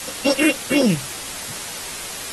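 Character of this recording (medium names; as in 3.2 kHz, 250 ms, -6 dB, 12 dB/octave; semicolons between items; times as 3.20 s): a buzz of ramps at a fixed pitch in blocks of 16 samples; phasing stages 4, 3.9 Hz, lowest notch 780–2400 Hz; a quantiser's noise floor 6-bit, dither triangular; AAC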